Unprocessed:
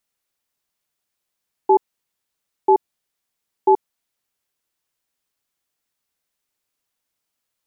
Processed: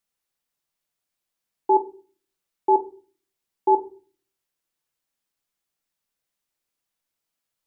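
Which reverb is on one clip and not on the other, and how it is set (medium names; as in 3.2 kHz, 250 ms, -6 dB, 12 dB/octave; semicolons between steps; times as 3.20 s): simulated room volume 300 m³, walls furnished, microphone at 0.73 m; trim -4.5 dB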